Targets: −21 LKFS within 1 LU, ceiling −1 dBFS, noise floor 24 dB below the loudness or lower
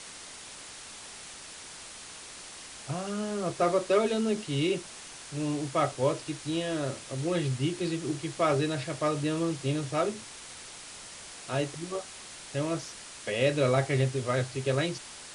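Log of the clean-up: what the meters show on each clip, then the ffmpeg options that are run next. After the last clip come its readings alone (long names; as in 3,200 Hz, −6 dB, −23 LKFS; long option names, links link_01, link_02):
background noise floor −46 dBFS; target noise floor −54 dBFS; integrated loudness −30.0 LKFS; sample peak −12.5 dBFS; target loudness −21.0 LKFS
→ -af "afftdn=noise_reduction=8:noise_floor=-46"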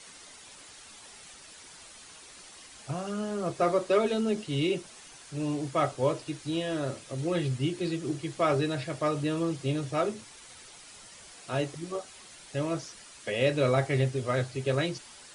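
background noise floor −50 dBFS; target noise floor −54 dBFS
→ -af "afftdn=noise_reduction=6:noise_floor=-50"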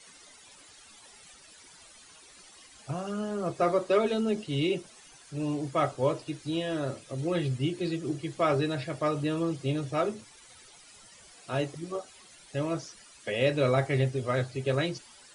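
background noise floor −54 dBFS; integrated loudness −30.0 LKFS; sample peak −12.5 dBFS; target loudness −21.0 LKFS
→ -af "volume=9dB"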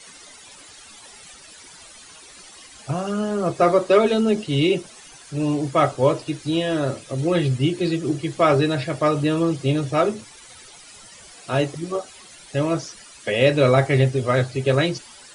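integrated loudness −21.0 LKFS; sample peak −3.5 dBFS; background noise floor −45 dBFS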